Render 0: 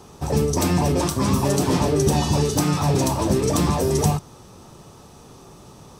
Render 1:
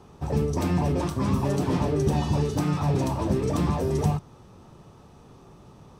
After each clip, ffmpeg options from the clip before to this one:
-af "bass=f=250:g=3,treble=f=4k:g=-10,volume=-6dB"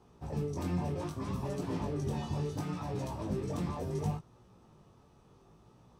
-af "flanger=delay=16.5:depth=5.9:speed=0.68,volume=-8dB"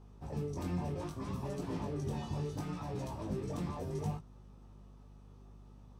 -af "aeval=exprs='val(0)+0.00282*(sin(2*PI*50*n/s)+sin(2*PI*2*50*n/s)/2+sin(2*PI*3*50*n/s)/3+sin(2*PI*4*50*n/s)/4+sin(2*PI*5*50*n/s)/5)':c=same,volume=-3dB"

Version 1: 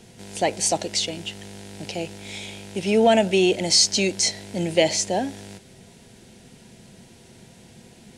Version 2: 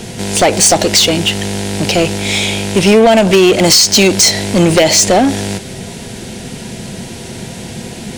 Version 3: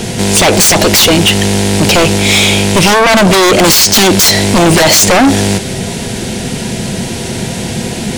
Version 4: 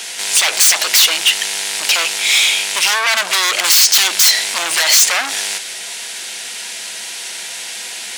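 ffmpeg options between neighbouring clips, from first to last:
-af "acompressor=threshold=-20dB:ratio=12,aeval=exprs='0.266*sin(PI/2*2*val(0)/0.266)':c=same,aeval=exprs='0.266*(cos(1*acos(clip(val(0)/0.266,-1,1)))-cos(1*PI/2))+0.0266*(cos(5*acos(clip(val(0)/0.266,-1,1)))-cos(5*PI/2))':c=same,volume=8.5dB"
-af "aeval=exprs='0.794*sin(PI/2*2.24*val(0)/0.794)':c=same,volume=-2dB"
-af "highpass=1.5k,volume=-2.5dB"

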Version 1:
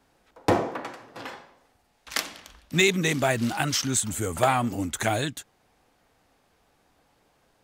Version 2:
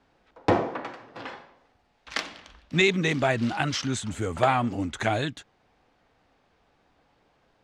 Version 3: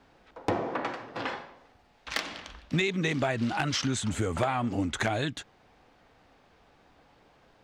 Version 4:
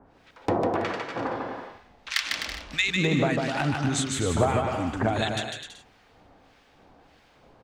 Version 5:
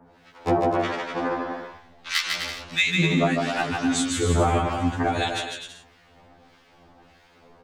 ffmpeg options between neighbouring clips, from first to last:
-af "lowpass=4.3k"
-af "acompressor=threshold=-30dB:ratio=6,volume=22dB,asoftclip=hard,volume=-22dB,volume=5dB"
-filter_complex "[0:a]acrossover=split=1300[a][b];[a]aeval=exprs='val(0)*(1-1/2+1/2*cos(2*PI*1.6*n/s))':c=same[c];[b]aeval=exprs='val(0)*(1-1/2-1/2*cos(2*PI*1.6*n/s))':c=same[d];[c][d]amix=inputs=2:normalize=0,asplit=2[e][f];[f]aecho=0:1:150|255|328.5|380|416:0.631|0.398|0.251|0.158|0.1[g];[e][g]amix=inputs=2:normalize=0,volume=6.5dB"
-af "afftfilt=real='re*2*eq(mod(b,4),0)':imag='im*2*eq(mod(b,4),0)':win_size=2048:overlap=0.75,volume=5dB"

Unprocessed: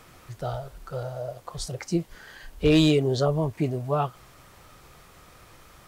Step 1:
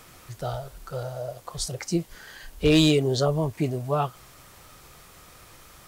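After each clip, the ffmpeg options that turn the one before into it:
-af "highshelf=f=3.9k:g=7"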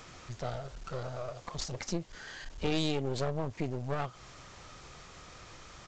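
-af "acompressor=threshold=-33dB:ratio=2,aresample=16000,aeval=exprs='clip(val(0),-1,0.00708)':c=same,aresample=44100"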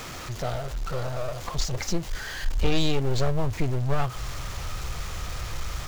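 -af "aeval=exprs='val(0)+0.5*0.00841*sgn(val(0))':c=same,asubboost=boost=5.5:cutoff=99,volume=5.5dB"

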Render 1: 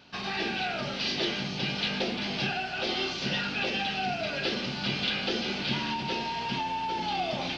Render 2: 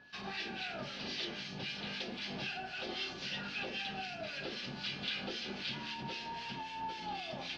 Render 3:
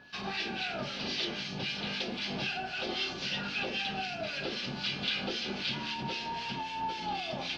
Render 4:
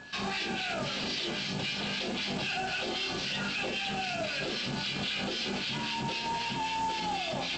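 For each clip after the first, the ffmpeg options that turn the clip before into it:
-filter_complex "[0:a]acrossover=split=1400[a][b];[a]alimiter=level_in=2.5dB:limit=-24dB:level=0:latency=1:release=319,volume=-2.5dB[c];[c][b]amix=inputs=2:normalize=0,acrossover=split=1400[d][e];[d]aeval=exprs='val(0)*(1-0.7/2+0.7/2*cos(2*PI*3.8*n/s))':c=same[f];[e]aeval=exprs='val(0)*(1-0.7/2-0.7/2*cos(2*PI*3.8*n/s))':c=same[g];[f][g]amix=inputs=2:normalize=0,aeval=exprs='val(0)+0.00251*sin(2*PI*1700*n/s)':c=same,volume=-6dB"
-af "equalizer=f=1.8k:w=5.9:g=-4,volume=6dB"
-af "acontrast=85,alimiter=level_in=1.5dB:limit=-24dB:level=0:latency=1:release=34,volume=-1.5dB,aresample=16000,acrusher=bits=3:mode=log:mix=0:aa=0.000001,aresample=44100"

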